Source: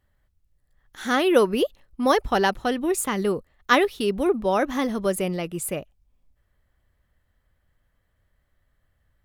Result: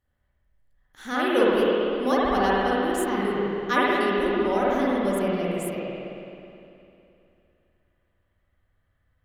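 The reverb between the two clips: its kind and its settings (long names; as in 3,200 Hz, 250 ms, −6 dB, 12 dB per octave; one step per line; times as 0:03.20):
spring reverb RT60 2.8 s, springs 51/55 ms, chirp 75 ms, DRR −7 dB
level −8.5 dB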